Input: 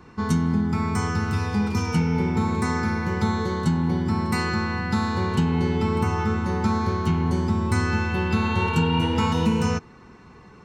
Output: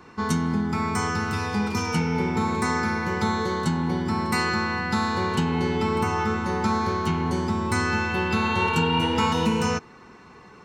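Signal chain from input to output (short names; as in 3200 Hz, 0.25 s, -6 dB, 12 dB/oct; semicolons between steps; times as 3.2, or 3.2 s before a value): low shelf 200 Hz -11 dB; gain +3 dB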